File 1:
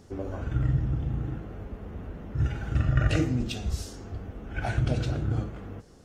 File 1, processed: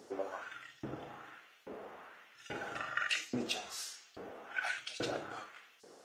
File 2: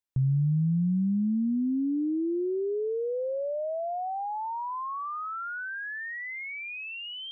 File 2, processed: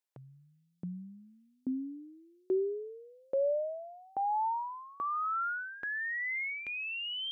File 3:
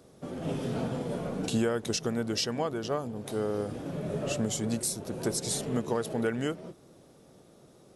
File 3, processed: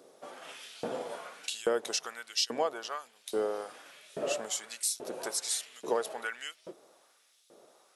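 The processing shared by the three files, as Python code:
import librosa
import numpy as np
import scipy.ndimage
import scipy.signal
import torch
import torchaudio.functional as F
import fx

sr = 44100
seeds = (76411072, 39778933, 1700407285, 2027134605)

y = fx.filter_lfo_highpass(x, sr, shape='saw_up', hz=1.2, low_hz=350.0, high_hz=4000.0, q=1.2)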